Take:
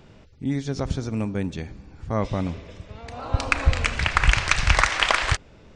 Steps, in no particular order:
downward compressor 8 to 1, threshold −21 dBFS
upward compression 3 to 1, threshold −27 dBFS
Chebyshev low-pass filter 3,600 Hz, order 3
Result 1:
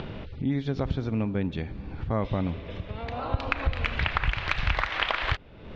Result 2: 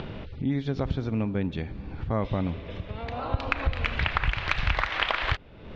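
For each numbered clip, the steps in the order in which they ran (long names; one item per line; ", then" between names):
upward compression, then downward compressor, then Chebyshev low-pass filter
upward compression, then Chebyshev low-pass filter, then downward compressor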